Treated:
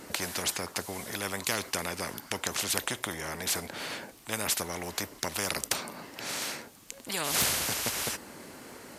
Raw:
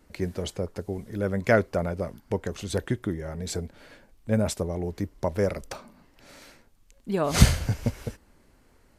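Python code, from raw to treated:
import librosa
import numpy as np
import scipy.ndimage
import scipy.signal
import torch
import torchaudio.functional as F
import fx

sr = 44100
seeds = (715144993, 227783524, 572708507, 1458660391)

y = scipy.signal.sosfilt(scipy.signal.butter(2, 190.0, 'highpass', fs=sr, output='sos'), x)
y = fx.peak_eq(y, sr, hz=11000.0, db=3.5, octaves=2.2)
y = fx.spectral_comp(y, sr, ratio=4.0)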